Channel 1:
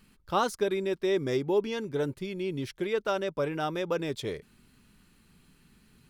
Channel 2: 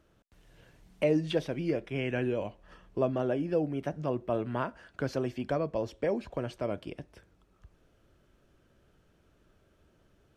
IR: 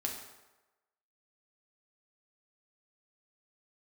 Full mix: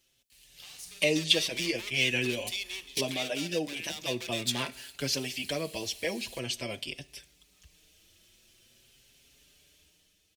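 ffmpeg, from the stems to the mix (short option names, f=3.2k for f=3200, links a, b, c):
-filter_complex "[0:a]volume=29dB,asoftclip=hard,volume=-29dB,highpass=740,acompressor=threshold=-46dB:ratio=4,adelay=300,volume=-5.5dB,asplit=2[a][b];[b]volume=-12.5dB[c];[1:a]dynaudnorm=f=130:g=9:m=9dB,asplit=2[d][e];[e]adelay=5.4,afreqshift=0.45[f];[d][f]amix=inputs=2:normalize=1,volume=-11.5dB,asplit=3[g][h][i];[h]volume=-17dB[j];[i]apad=whole_len=281979[k];[a][k]sidechaingate=range=-33dB:threshold=-60dB:ratio=16:detection=peak[l];[2:a]atrim=start_sample=2205[m];[c][j]amix=inputs=2:normalize=0[n];[n][m]afir=irnorm=-1:irlink=0[o];[l][g][o]amix=inputs=3:normalize=0,aexciter=amount=14.8:drive=1.4:freq=2.1k"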